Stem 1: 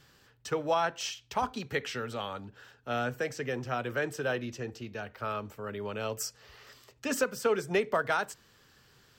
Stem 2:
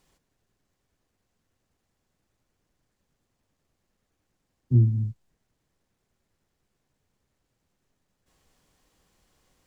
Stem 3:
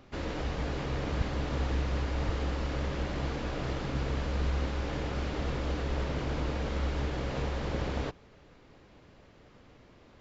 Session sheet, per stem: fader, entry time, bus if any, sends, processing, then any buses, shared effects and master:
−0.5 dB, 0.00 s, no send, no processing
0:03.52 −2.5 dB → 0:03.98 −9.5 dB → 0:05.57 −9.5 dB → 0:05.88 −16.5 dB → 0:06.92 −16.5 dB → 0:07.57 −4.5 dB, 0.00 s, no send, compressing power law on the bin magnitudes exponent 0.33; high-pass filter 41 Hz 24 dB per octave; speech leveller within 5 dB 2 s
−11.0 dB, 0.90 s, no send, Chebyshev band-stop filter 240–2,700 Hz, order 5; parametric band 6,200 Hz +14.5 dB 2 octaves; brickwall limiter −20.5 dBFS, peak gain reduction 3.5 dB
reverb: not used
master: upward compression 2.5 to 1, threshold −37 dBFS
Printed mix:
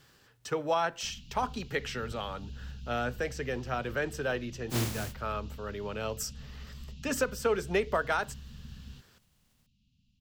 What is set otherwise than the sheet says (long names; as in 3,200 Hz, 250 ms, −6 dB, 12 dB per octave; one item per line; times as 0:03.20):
stem 3: missing parametric band 6,200 Hz +14.5 dB 2 octaves
master: missing upward compression 2.5 to 1, threshold −37 dBFS